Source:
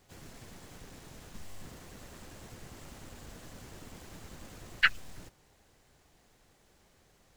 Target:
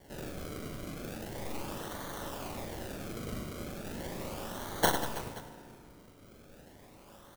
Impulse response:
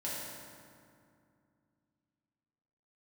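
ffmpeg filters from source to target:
-filter_complex "[0:a]aexciter=amount=8.8:drive=7.9:freq=8200,acrusher=samples=34:mix=1:aa=0.000001:lfo=1:lforange=34:lforate=0.37,highshelf=frequency=8000:gain=7.5,aecho=1:1:40|100|190|325|527.5:0.631|0.398|0.251|0.158|0.1,asplit=2[link_01][link_02];[1:a]atrim=start_sample=2205[link_03];[link_02][link_03]afir=irnorm=-1:irlink=0,volume=-13dB[link_04];[link_01][link_04]amix=inputs=2:normalize=0,volume=-4.5dB"

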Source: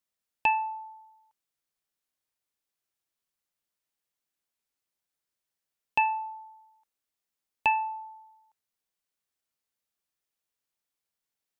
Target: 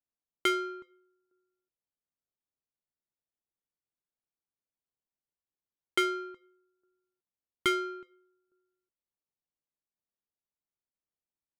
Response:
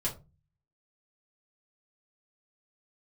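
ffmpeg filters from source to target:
-filter_complex "[0:a]asplit=2[link_01][link_02];[link_02]adelay=370,highpass=300,lowpass=3400,asoftclip=type=hard:threshold=-24dB,volume=-18dB[link_03];[link_01][link_03]amix=inputs=2:normalize=0,aeval=exprs='val(0)*sin(2*PI*510*n/s)':channel_layout=same,adynamicsmooth=sensitivity=5:basefreq=910"

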